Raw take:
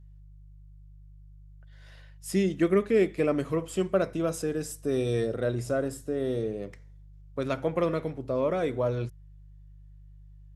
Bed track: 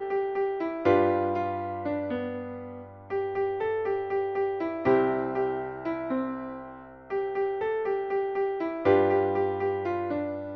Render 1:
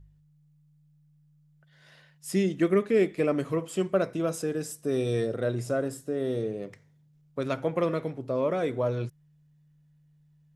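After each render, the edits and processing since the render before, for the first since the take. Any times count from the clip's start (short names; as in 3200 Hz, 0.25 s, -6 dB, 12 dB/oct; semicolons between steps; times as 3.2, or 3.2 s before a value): de-hum 50 Hz, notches 2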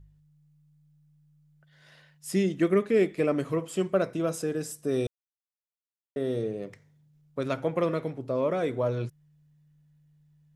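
5.07–6.16 mute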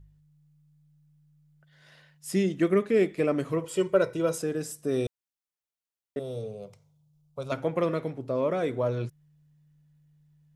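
3.64–4.38 comb 2.1 ms, depth 73%; 6.19–7.52 fixed phaser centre 750 Hz, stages 4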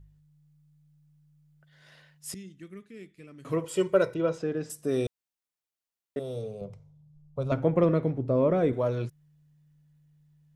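2.34–3.45 passive tone stack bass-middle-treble 6-0-2; 4.14–4.7 air absorption 180 m; 6.61–8.73 tilt -3 dB/oct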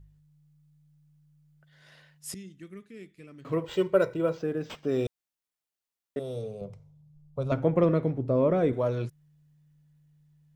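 3.4–5.06 decimation joined by straight lines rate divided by 4×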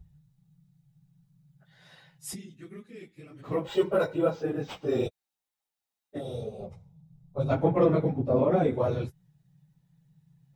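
phase scrambler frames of 50 ms; small resonant body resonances 810/3800 Hz, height 9 dB, ringing for 25 ms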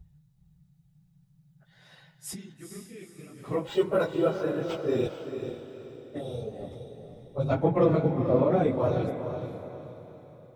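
diffused feedback echo 0.454 s, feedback 41%, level -7.5 dB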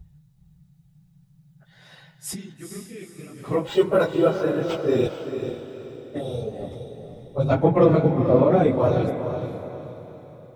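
gain +6 dB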